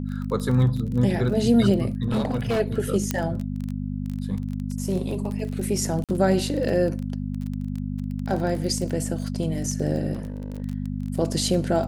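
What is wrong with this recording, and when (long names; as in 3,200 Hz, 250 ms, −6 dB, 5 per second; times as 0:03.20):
surface crackle 23 per second −29 dBFS
mains hum 50 Hz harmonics 5 −29 dBFS
0:02.08–0:02.61: clipping −19.5 dBFS
0:03.11: click −8 dBFS
0:06.04–0:06.09: drop-out 47 ms
0:10.13–0:10.62: clipping −27 dBFS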